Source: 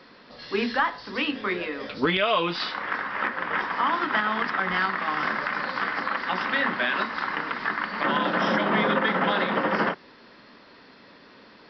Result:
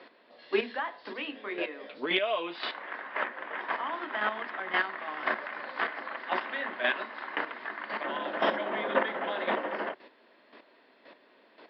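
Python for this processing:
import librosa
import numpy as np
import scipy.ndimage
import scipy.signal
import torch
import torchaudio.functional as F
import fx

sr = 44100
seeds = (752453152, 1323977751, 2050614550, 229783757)

y = fx.low_shelf(x, sr, hz=270.0, db=-7.5)
y = fx.chopper(y, sr, hz=1.9, depth_pct=65, duty_pct=15)
y = fx.cabinet(y, sr, low_hz=170.0, low_slope=24, high_hz=3700.0, hz=(180.0, 360.0, 640.0, 1300.0), db=(-9, 4, 7, -5))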